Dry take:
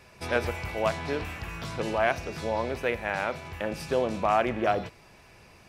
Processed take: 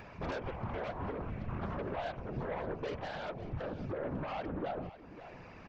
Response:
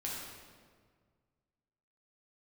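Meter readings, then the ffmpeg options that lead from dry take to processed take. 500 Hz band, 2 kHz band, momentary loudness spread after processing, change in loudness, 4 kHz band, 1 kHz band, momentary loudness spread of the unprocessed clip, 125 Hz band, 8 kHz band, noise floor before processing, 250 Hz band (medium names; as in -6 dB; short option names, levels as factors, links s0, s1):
-11.0 dB, -14.5 dB, 4 LU, -10.5 dB, -12.5 dB, -12.0 dB, 9 LU, -4.0 dB, under -20 dB, -55 dBFS, -6.5 dB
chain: -filter_complex "[0:a]lowpass=1800,aemphasis=mode=production:type=50fm,afwtdn=0.0158,acompressor=threshold=0.02:ratio=6,alimiter=level_in=1.78:limit=0.0631:level=0:latency=1:release=146,volume=0.562,acompressor=mode=upward:threshold=0.00794:ratio=2.5,aresample=16000,aeval=exprs='0.0376*sin(PI/2*2*val(0)/0.0376)':c=same,aresample=44100,afftfilt=real='hypot(re,im)*cos(2*PI*random(0))':imag='hypot(re,im)*sin(2*PI*random(1))':win_size=512:overlap=0.75,asplit=2[s0][s1];[s1]aecho=0:1:547:0.188[s2];[s0][s2]amix=inputs=2:normalize=0,volume=1.12"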